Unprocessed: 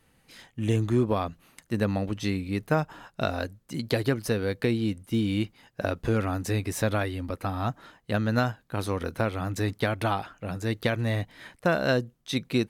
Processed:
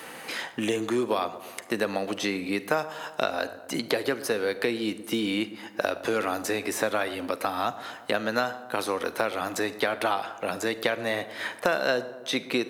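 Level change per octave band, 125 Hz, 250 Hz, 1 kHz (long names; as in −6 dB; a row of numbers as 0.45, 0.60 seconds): −16.0, −2.5, +3.0 decibels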